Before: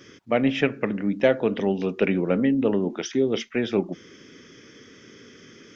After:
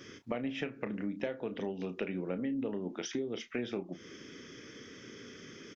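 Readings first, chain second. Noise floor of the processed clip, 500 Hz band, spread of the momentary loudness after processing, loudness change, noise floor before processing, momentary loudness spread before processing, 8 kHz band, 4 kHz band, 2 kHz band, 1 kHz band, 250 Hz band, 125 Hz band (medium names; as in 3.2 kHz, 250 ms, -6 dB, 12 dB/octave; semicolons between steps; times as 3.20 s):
-52 dBFS, -14.5 dB, 13 LU, -14.0 dB, -50 dBFS, 5 LU, no reading, -10.5 dB, -13.0 dB, -14.0 dB, -13.0 dB, -13.5 dB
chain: compression 10:1, threshold -31 dBFS, peak gain reduction 17.5 dB; doubling 33 ms -11.5 dB; trim -2 dB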